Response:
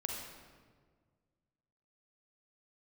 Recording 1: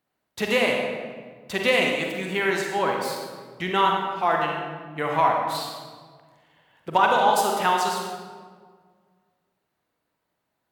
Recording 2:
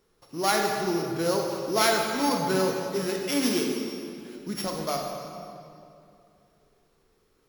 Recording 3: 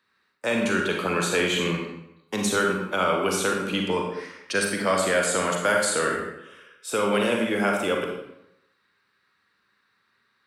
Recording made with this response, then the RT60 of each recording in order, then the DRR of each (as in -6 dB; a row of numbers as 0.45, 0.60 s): 1; 1.7, 2.6, 0.85 s; 0.0, 1.0, 0.5 dB